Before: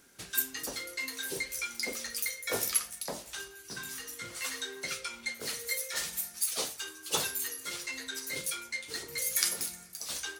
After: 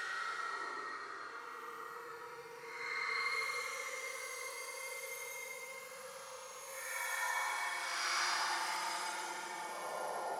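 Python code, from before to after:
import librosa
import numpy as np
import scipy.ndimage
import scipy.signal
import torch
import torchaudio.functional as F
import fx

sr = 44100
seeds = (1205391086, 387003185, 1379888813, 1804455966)

y = fx.filter_sweep_bandpass(x, sr, from_hz=4000.0, to_hz=540.0, start_s=7.81, end_s=9.99, q=5.9)
y = fx.paulstretch(y, sr, seeds[0], factor=19.0, window_s=0.05, from_s=9.0)
y = y * librosa.db_to_amplitude(16.5)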